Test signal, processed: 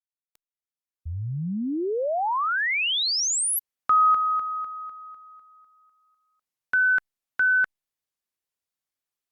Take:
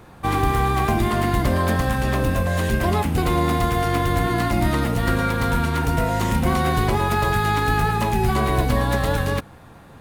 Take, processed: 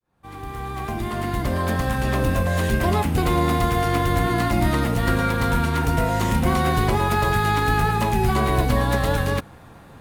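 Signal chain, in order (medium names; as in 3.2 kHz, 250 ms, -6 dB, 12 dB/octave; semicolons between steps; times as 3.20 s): fade-in on the opening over 2.29 s; Opus 96 kbps 48 kHz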